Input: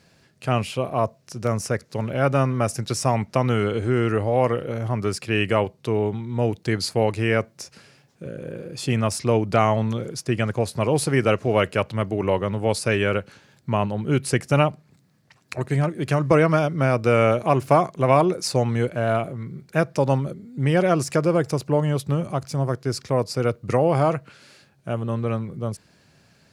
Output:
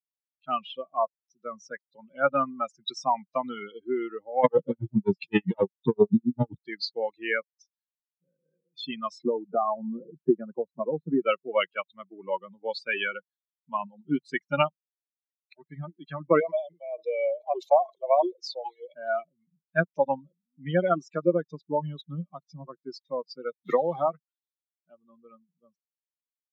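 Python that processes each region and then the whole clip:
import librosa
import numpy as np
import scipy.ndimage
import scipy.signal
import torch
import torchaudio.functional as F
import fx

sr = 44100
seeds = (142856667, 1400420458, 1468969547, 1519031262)

y = fx.chain(x, sr, fx.low_shelf(hz=320.0, db=12.0),
    fx.leveller(passes=3),
    fx.tremolo_db(hz=7.6, depth_db=22), at=(4.44, 6.63))
y = fx.chain(y, sr, fx.lowpass(hz=1000.0, slope=12),
    fx.band_squash(depth_pct=100), at=(9.22, 11.21))
y = fx.chain(y, sr, fx.highpass(hz=310.0, slope=12),
    fx.fixed_phaser(hz=590.0, stages=4),
    fx.sustainer(db_per_s=81.0), at=(16.4, 18.94))
y = fx.chain(y, sr, fx.crossing_spikes(level_db=-20.5),
    fx.band_squash(depth_pct=100), at=(23.65, 24.06))
y = fx.bin_expand(y, sr, power=3.0)
y = scipy.signal.sosfilt(scipy.signal.ellip(3, 1.0, 40, [180.0, 4200.0], 'bandpass', fs=sr, output='sos'), y)
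y = fx.rider(y, sr, range_db=5, speed_s=2.0)
y = y * 10.0 ** (3.5 / 20.0)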